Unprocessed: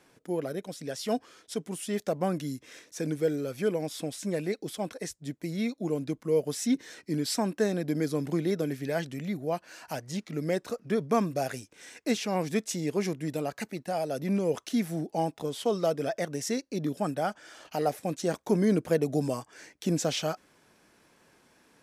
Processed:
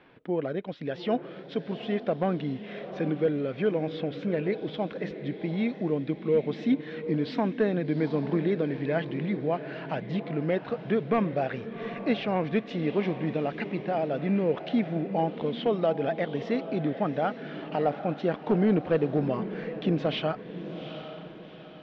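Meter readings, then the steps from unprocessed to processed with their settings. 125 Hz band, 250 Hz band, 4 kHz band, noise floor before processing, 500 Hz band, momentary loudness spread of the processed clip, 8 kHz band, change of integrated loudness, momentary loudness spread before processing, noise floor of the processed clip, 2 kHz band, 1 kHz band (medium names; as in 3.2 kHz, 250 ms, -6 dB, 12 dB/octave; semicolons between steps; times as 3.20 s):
+2.5 dB, +2.5 dB, -2.0 dB, -65 dBFS, +2.5 dB, 8 LU, under -30 dB, +2.0 dB, 9 LU, -44 dBFS, +3.0 dB, +2.0 dB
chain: in parallel at -1.5 dB: compression, threshold -36 dBFS, peak gain reduction 16 dB; on the sum: hard clipper -16 dBFS, distortion -26 dB; steep low-pass 3.5 kHz 36 dB/octave; echo that smears into a reverb 784 ms, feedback 42%, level -10.5 dB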